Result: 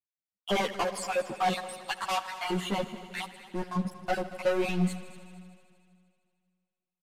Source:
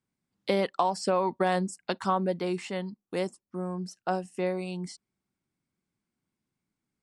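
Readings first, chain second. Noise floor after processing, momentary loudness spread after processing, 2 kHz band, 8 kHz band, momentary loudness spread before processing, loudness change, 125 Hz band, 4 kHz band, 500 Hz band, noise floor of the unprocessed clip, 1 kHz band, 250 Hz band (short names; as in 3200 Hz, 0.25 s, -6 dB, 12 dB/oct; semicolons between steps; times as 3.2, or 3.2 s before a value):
under -85 dBFS, 13 LU, +3.0 dB, +2.5 dB, 10 LU, -1.0 dB, 0.0 dB, +4.0 dB, -2.5 dB, under -85 dBFS, -1.5 dB, -1.0 dB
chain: random spectral dropouts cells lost 55%; bell 5300 Hz -13.5 dB 0.41 oct; notch 870 Hz, Q 18; harmonic-percussive split percussive -6 dB; low shelf 490 Hz -6.5 dB; sample leveller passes 5; on a send: multi-head echo 77 ms, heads all three, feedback 61%, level -19 dB; on the sum: downsampling 32000 Hz; ensemble effect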